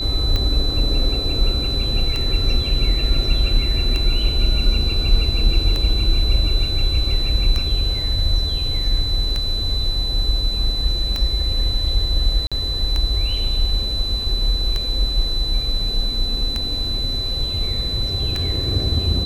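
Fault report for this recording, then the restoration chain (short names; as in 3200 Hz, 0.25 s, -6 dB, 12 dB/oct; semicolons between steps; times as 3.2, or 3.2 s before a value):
tick 33 1/3 rpm -9 dBFS
tone 4000 Hz -23 dBFS
12.47–12.52 gap 46 ms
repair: de-click; notch 4000 Hz, Q 30; interpolate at 12.47, 46 ms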